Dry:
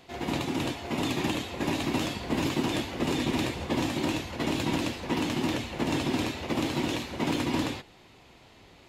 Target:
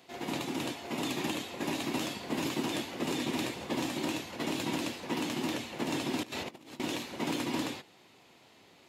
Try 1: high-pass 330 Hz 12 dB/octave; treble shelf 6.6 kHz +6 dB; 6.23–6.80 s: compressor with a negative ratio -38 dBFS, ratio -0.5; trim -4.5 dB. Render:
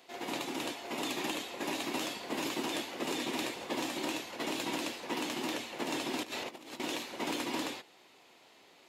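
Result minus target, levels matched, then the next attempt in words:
125 Hz band -8.5 dB
high-pass 160 Hz 12 dB/octave; treble shelf 6.6 kHz +6 dB; 6.23–6.80 s: compressor with a negative ratio -38 dBFS, ratio -0.5; trim -4.5 dB

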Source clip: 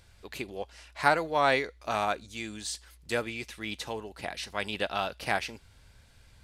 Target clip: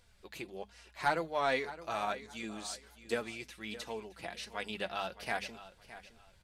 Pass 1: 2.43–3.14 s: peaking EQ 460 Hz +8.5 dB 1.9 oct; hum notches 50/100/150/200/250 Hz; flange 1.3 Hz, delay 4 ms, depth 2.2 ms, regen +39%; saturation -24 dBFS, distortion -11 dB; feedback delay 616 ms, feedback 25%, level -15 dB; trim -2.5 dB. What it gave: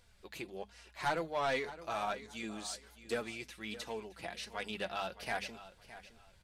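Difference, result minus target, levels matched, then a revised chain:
saturation: distortion +10 dB
2.43–3.14 s: peaking EQ 460 Hz +8.5 dB 1.9 oct; hum notches 50/100/150/200/250 Hz; flange 1.3 Hz, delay 4 ms, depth 2.2 ms, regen +39%; saturation -15 dBFS, distortion -22 dB; feedback delay 616 ms, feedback 25%, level -15 dB; trim -2.5 dB

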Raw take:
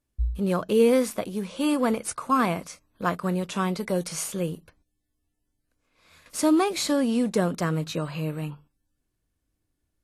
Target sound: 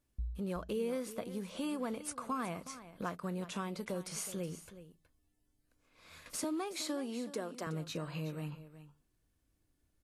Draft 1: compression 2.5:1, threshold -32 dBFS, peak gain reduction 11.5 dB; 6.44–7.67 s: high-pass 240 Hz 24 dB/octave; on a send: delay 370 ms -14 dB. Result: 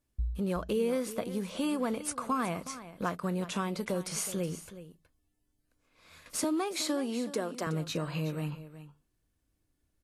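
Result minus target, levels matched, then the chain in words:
compression: peak gain reduction -6.5 dB
compression 2.5:1, threshold -42.5 dBFS, peak gain reduction 18 dB; 6.44–7.67 s: high-pass 240 Hz 24 dB/octave; on a send: delay 370 ms -14 dB

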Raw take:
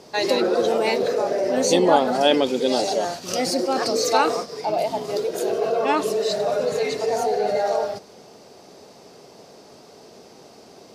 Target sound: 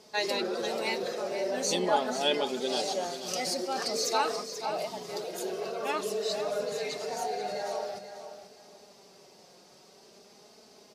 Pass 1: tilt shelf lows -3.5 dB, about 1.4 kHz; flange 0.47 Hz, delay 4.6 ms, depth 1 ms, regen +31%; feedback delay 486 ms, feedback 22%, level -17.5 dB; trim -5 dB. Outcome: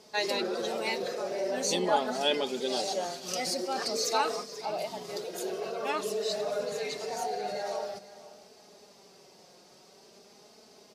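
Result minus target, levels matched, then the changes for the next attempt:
echo-to-direct -7 dB
change: feedback delay 486 ms, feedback 22%, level -10.5 dB

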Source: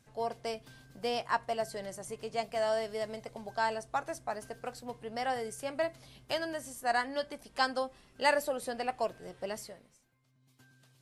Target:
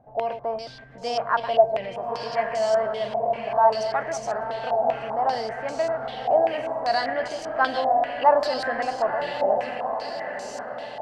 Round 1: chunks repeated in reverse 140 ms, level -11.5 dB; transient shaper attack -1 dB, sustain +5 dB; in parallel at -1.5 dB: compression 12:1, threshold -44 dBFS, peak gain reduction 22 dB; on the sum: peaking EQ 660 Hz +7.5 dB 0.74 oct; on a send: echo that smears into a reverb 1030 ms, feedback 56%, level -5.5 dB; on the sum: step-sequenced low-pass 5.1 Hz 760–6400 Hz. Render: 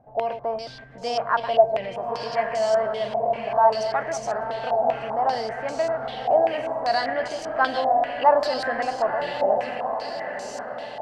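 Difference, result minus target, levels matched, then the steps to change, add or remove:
compression: peak gain reduction -7 dB
change: compression 12:1, threshold -51.5 dBFS, peak gain reduction 29 dB

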